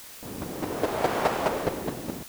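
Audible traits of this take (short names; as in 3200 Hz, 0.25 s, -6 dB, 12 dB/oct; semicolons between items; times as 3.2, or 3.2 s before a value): chopped level 4.8 Hz, depth 60%, duty 10%; a quantiser's noise floor 8-bit, dither triangular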